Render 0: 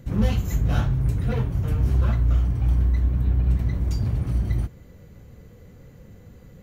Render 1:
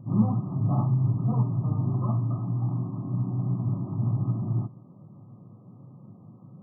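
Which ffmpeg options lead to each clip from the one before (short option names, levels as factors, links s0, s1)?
-af "equalizer=f=490:w=4.1:g=-15,afftfilt=real='re*between(b*sr/4096,100,1300)':imag='im*between(b*sr/4096,100,1300)':win_size=4096:overlap=0.75,bandreject=f=430:w=12,volume=1.26"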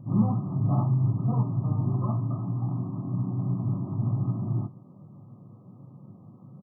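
-filter_complex "[0:a]asplit=2[s0][s1];[s1]adelay=21,volume=0.251[s2];[s0][s2]amix=inputs=2:normalize=0"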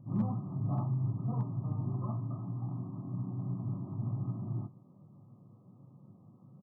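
-af "asoftclip=type=hard:threshold=0.178,volume=0.376"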